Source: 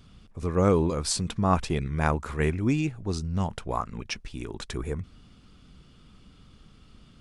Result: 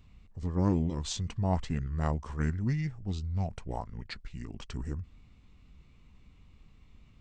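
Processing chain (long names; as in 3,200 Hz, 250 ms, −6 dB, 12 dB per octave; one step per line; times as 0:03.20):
low-shelf EQ 210 Hz +7 dB
formants moved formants −4 semitones
level −8.5 dB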